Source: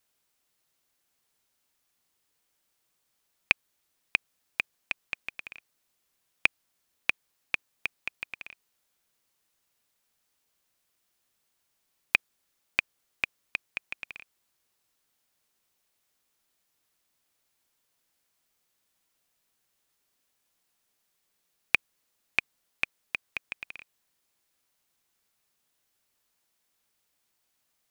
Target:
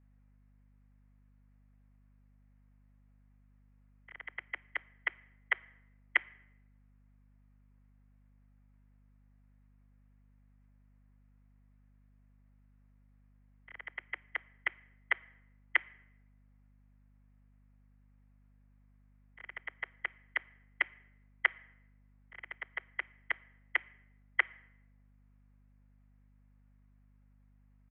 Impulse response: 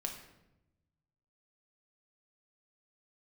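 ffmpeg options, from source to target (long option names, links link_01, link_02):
-filter_complex "[0:a]areverse,bandreject=frequency=800:width=12,aecho=1:1:6.5:0.94,aeval=exprs='val(0)*sin(2*PI*570*n/s)':channel_layout=same,acrossover=split=790[link_01][link_02];[link_01]asoftclip=type=tanh:threshold=-32.5dB[link_03];[link_03][link_02]amix=inputs=2:normalize=0,highpass=frequency=210:width_type=q:width=0.5412,highpass=frequency=210:width_type=q:width=1.307,lowpass=frequency=2100:width_type=q:width=0.5176,lowpass=frequency=2100:width_type=q:width=0.7071,lowpass=frequency=2100:width_type=q:width=1.932,afreqshift=120,asplit=2[link_04][link_05];[1:a]atrim=start_sample=2205[link_06];[link_05][link_06]afir=irnorm=-1:irlink=0,volume=-14.5dB[link_07];[link_04][link_07]amix=inputs=2:normalize=0,aeval=exprs='val(0)+0.000794*(sin(2*PI*50*n/s)+sin(2*PI*2*50*n/s)/2+sin(2*PI*3*50*n/s)/3+sin(2*PI*4*50*n/s)/4+sin(2*PI*5*50*n/s)/5)':channel_layout=same,volume=-1dB"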